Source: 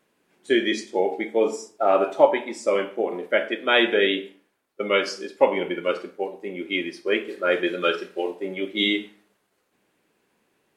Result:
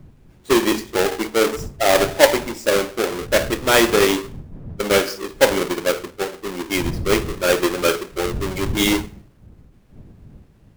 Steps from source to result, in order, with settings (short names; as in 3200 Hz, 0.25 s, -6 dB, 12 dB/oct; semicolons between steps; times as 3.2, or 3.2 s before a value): half-waves squared off; wind noise 140 Hz -34 dBFS